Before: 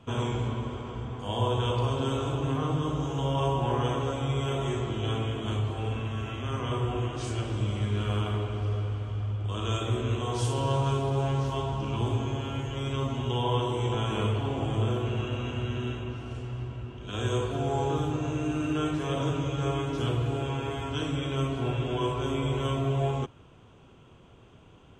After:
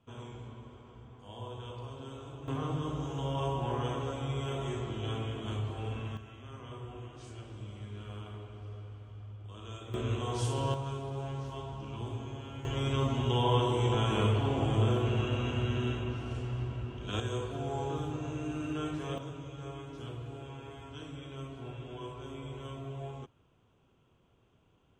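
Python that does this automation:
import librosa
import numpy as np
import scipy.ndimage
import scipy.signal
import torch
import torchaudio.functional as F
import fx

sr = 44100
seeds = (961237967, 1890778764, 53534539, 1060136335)

y = fx.gain(x, sr, db=fx.steps((0.0, -16.0), (2.48, -6.0), (6.17, -15.0), (9.94, -4.0), (10.74, -10.5), (12.65, 0.0), (17.2, -7.0), (19.18, -14.0)))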